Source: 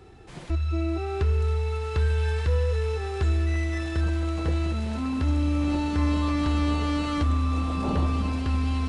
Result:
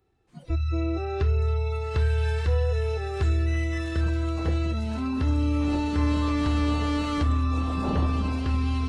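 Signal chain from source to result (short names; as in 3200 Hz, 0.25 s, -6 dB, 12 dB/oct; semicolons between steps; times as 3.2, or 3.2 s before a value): spectral noise reduction 21 dB; harmoniser +7 st -17 dB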